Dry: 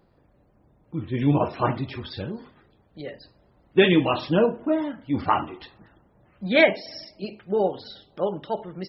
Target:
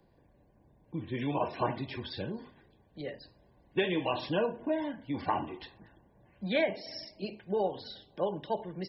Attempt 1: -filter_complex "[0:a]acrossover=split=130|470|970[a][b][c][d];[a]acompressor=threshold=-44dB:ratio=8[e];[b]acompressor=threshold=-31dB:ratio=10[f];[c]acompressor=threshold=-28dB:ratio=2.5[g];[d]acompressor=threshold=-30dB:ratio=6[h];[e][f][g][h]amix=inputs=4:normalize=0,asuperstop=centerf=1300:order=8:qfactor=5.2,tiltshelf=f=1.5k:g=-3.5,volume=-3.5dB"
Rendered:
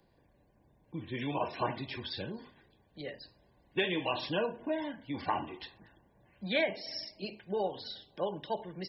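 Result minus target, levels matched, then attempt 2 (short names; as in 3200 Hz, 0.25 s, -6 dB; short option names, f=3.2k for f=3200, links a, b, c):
2000 Hz band +3.0 dB
-filter_complex "[0:a]acrossover=split=130|470|970[a][b][c][d];[a]acompressor=threshold=-44dB:ratio=8[e];[b]acompressor=threshold=-31dB:ratio=10[f];[c]acompressor=threshold=-28dB:ratio=2.5[g];[d]acompressor=threshold=-30dB:ratio=6[h];[e][f][g][h]amix=inputs=4:normalize=0,asuperstop=centerf=1300:order=8:qfactor=5.2,volume=-3.5dB"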